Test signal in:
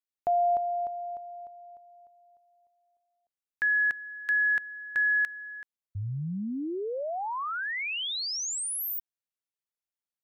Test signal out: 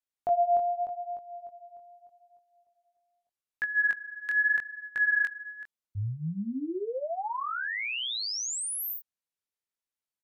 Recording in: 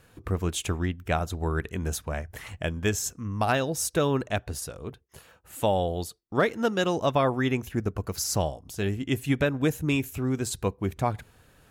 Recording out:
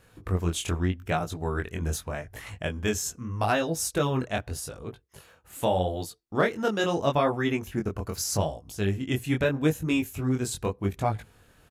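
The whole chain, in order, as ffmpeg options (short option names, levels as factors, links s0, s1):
-af "flanger=delay=18:depth=6.5:speed=0.81,aresample=32000,aresample=44100,volume=1.33"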